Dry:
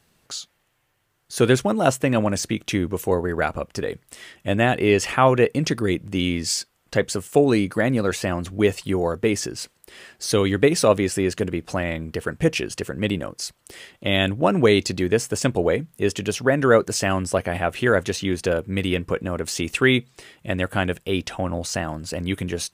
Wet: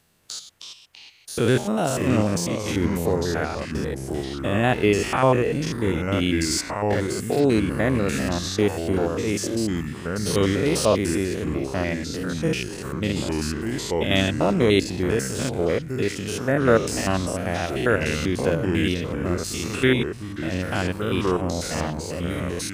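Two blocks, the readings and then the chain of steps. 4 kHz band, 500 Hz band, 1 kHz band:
-1.0 dB, -2.0 dB, -2.0 dB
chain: spectrogram pixelated in time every 100 ms; treble shelf 8.6 kHz +4.5 dB; ever faster or slower copies 236 ms, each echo -4 st, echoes 2, each echo -6 dB

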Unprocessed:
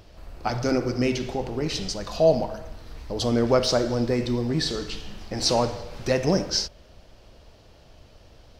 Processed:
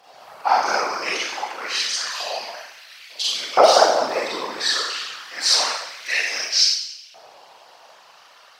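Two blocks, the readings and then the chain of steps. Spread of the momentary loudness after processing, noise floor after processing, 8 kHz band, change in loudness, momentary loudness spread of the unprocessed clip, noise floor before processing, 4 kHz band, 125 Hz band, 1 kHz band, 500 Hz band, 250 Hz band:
15 LU, -50 dBFS, +9.0 dB, +5.0 dB, 14 LU, -52 dBFS, +9.5 dB, under -25 dB, +11.0 dB, +1.0 dB, -13.5 dB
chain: Schroeder reverb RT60 0.77 s, combs from 30 ms, DRR -7.5 dB; whisper effect; LFO high-pass saw up 0.28 Hz 720–2900 Hz

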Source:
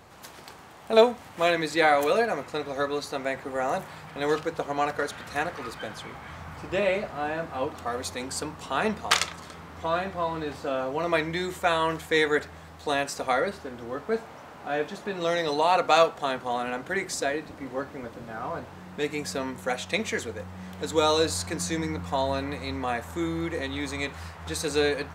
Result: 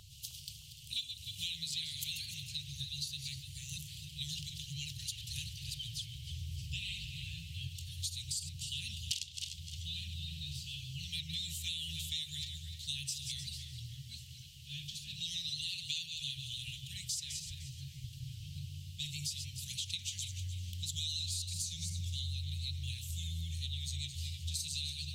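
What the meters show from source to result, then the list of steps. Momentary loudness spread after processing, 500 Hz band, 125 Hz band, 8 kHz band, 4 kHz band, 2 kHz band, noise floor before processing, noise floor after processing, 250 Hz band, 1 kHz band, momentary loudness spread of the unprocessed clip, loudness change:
9 LU, under -40 dB, -2.0 dB, -3.5 dB, -2.5 dB, -20.5 dB, -46 dBFS, -51 dBFS, -21.5 dB, under -40 dB, 15 LU, -12.0 dB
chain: backward echo that repeats 150 ms, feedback 41%, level -10 dB; Chebyshev band-stop 140–2900 Hz, order 5; compression 6:1, threshold -39 dBFS, peak gain reduction 17.5 dB; vibrato 13 Hz 45 cents; band-passed feedback delay 310 ms, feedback 69%, band-pass 980 Hz, level -5 dB; trim +3.5 dB

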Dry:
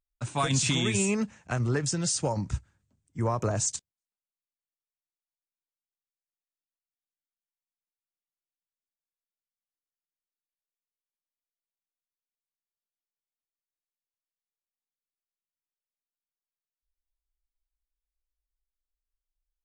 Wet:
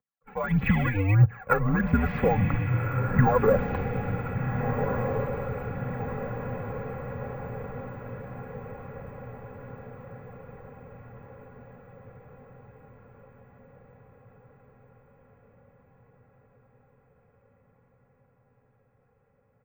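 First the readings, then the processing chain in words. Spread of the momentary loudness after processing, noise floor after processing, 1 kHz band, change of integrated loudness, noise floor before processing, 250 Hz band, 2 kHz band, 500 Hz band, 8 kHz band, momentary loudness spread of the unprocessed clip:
21 LU, -67 dBFS, +7.0 dB, +1.0 dB, under -85 dBFS, +5.0 dB, +6.0 dB, +7.5 dB, under -35 dB, 10 LU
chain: comb 3.4 ms, depth 75%; mistuned SSB -100 Hz 170–2100 Hz; compression 5:1, threshold -38 dBFS, peak gain reduction 14.5 dB; phaser 1.6 Hz, delay 2.5 ms, feedback 64%; level rider gain up to 15.5 dB; careless resampling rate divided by 2×, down none, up hold; echo that smears into a reverb 1580 ms, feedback 58%, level -5 dB; attacks held to a fixed rise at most 580 dB/s

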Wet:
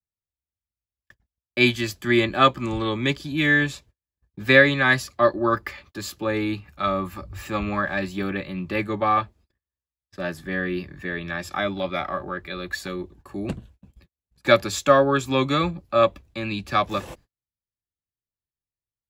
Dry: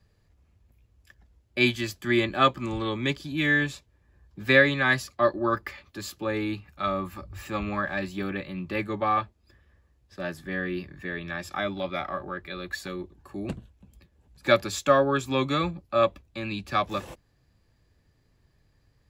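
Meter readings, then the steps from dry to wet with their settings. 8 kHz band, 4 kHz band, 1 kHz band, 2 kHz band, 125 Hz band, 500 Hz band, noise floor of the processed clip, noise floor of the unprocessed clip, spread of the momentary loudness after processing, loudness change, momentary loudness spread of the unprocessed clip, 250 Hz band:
+4.0 dB, +4.0 dB, +4.0 dB, +4.0 dB, +4.0 dB, +4.0 dB, under -85 dBFS, -67 dBFS, 15 LU, +4.0 dB, 15 LU, +4.0 dB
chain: gate -53 dBFS, range -39 dB; trim +4 dB

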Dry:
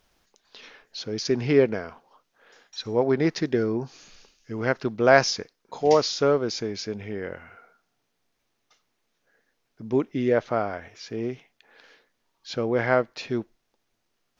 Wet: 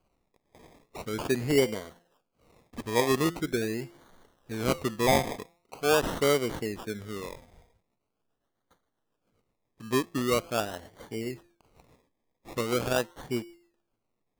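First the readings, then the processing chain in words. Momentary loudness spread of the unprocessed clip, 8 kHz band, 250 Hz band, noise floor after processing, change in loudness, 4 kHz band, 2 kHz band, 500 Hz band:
17 LU, no reading, -4.0 dB, -81 dBFS, -4.5 dB, -2.5 dB, -4.5 dB, -5.5 dB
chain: de-hum 172 Hz, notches 18; rotary cabinet horn 0.6 Hz, later 7.5 Hz, at 6.99 s; decimation with a swept rate 24×, swing 60% 0.43 Hz; trim -2.5 dB

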